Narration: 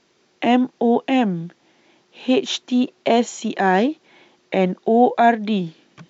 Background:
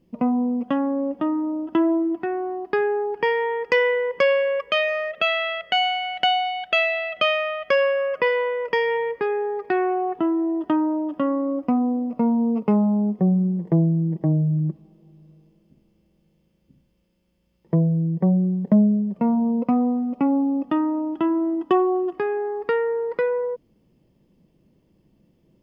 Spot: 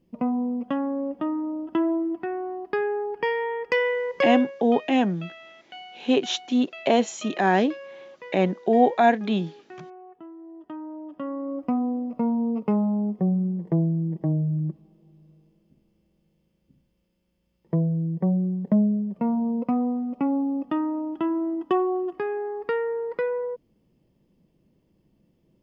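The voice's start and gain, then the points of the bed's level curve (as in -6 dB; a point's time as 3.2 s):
3.80 s, -3.5 dB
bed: 4.34 s -4 dB
4.59 s -21.5 dB
10.36 s -21.5 dB
11.69 s -4 dB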